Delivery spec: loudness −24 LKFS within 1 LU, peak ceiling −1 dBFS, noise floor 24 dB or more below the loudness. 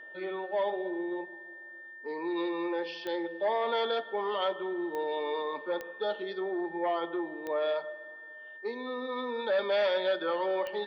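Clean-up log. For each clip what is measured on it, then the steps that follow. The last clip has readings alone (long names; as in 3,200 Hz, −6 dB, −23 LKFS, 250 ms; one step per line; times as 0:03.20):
number of clicks 5; interfering tone 1,800 Hz; level of the tone −45 dBFS; integrated loudness −32.5 LKFS; sample peak −19.5 dBFS; target loudness −24.0 LKFS
→ click removal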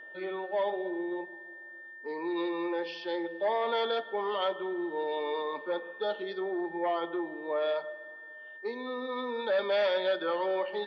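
number of clicks 0; interfering tone 1,800 Hz; level of the tone −45 dBFS
→ notch filter 1,800 Hz, Q 30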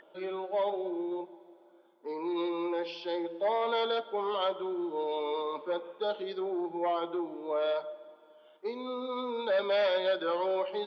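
interfering tone none found; integrated loudness −32.5 LKFS; sample peak −19.5 dBFS; target loudness −24.0 LKFS
→ level +8.5 dB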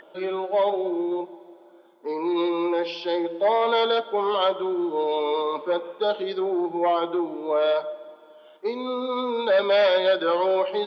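integrated loudness −24.0 LKFS; sample peak −11.0 dBFS; background noise floor −51 dBFS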